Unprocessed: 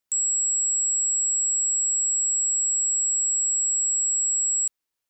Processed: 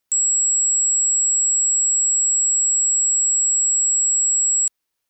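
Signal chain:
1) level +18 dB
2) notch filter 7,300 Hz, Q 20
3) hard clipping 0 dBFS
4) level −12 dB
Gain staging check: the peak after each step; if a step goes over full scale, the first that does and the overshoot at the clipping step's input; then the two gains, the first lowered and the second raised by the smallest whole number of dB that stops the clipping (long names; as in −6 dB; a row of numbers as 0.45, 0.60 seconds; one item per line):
−2.5, −2.5, −2.5, −14.5 dBFS
no step passes full scale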